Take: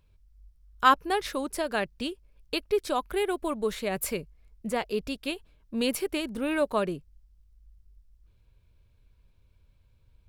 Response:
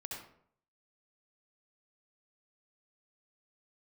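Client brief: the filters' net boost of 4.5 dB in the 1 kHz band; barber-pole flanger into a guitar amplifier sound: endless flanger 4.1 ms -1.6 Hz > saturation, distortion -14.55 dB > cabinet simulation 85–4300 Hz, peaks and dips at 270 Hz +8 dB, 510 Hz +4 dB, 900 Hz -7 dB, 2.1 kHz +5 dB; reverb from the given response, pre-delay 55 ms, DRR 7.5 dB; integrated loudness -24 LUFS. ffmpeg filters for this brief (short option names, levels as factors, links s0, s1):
-filter_complex "[0:a]equalizer=f=1000:t=o:g=8,asplit=2[s0][s1];[1:a]atrim=start_sample=2205,adelay=55[s2];[s1][s2]afir=irnorm=-1:irlink=0,volume=0.473[s3];[s0][s3]amix=inputs=2:normalize=0,asplit=2[s4][s5];[s5]adelay=4.1,afreqshift=-1.6[s6];[s4][s6]amix=inputs=2:normalize=1,asoftclip=threshold=0.266,highpass=85,equalizer=f=270:t=q:w=4:g=8,equalizer=f=510:t=q:w=4:g=4,equalizer=f=900:t=q:w=4:g=-7,equalizer=f=2100:t=q:w=4:g=5,lowpass=f=4300:w=0.5412,lowpass=f=4300:w=1.3066,volume=1.78"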